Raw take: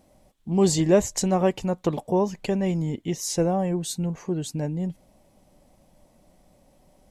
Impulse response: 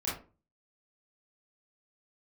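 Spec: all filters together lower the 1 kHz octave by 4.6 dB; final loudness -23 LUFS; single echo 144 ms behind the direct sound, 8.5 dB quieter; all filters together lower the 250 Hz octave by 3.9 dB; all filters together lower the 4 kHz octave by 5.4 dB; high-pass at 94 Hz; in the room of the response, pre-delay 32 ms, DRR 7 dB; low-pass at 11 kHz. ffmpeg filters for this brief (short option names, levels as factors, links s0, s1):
-filter_complex "[0:a]highpass=94,lowpass=11000,equalizer=f=250:t=o:g=-6,equalizer=f=1000:t=o:g=-6,equalizer=f=4000:t=o:g=-7,aecho=1:1:144:0.376,asplit=2[s0][s1];[1:a]atrim=start_sample=2205,adelay=32[s2];[s1][s2]afir=irnorm=-1:irlink=0,volume=0.237[s3];[s0][s3]amix=inputs=2:normalize=0,volume=1.58"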